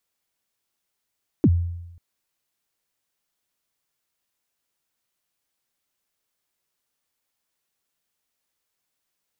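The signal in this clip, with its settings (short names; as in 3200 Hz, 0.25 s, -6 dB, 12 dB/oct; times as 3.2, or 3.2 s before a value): kick drum length 0.54 s, from 370 Hz, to 86 Hz, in 51 ms, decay 0.93 s, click off, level -10.5 dB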